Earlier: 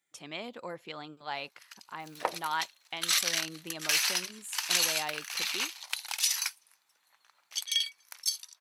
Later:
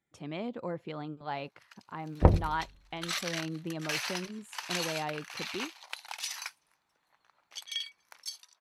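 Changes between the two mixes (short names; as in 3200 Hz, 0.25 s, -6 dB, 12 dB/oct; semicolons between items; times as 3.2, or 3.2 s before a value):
second sound: remove HPF 640 Hz 12 dB/oct; master: add tilt -4 dB/oct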